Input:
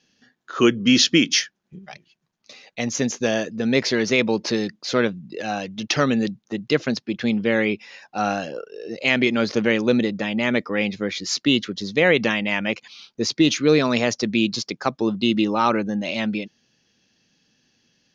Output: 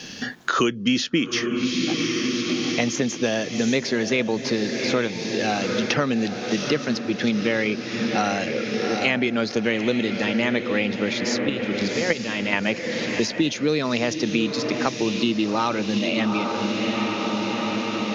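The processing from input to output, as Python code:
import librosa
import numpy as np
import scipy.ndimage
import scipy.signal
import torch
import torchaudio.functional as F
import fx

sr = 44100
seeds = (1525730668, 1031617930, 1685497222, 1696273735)

y = fx.level_steps(x, sr, step_db=15, at=(11.4, 12.53))
y = fx.echo_diffused(y, sr, ms=787, feedback_pct=55, wet_db=-9.5)
y = fx.band_squash(y, sr, depth_pct=100)
y = F.gain(torch.from_numpy(y), -2.5).numpy()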